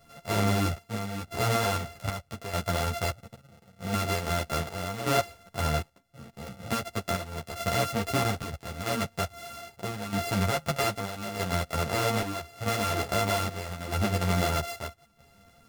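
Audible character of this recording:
a buzz of ramps at a fixed pitch in blocks of 64 samples
chopped level 0.79 Hz, depth 60%, duty 65%
a shimmering, thickened sound

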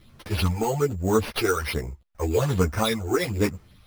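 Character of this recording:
phaser sweep stages 12, 1.2 Hz, lowest notch 170–4,500 Hz
aliases and images of a low sample rate 7,300 Hz, jitter 0%
a shimmering, thickened sound

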